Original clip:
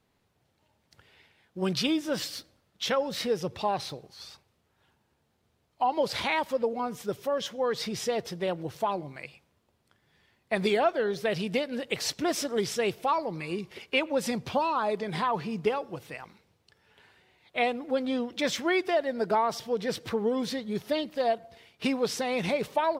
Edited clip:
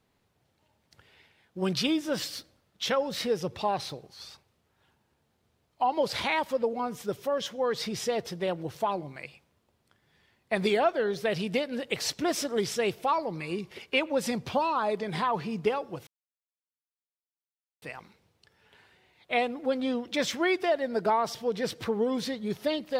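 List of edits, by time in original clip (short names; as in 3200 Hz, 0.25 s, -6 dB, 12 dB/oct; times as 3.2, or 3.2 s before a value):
16.07 insert silence 1.75 s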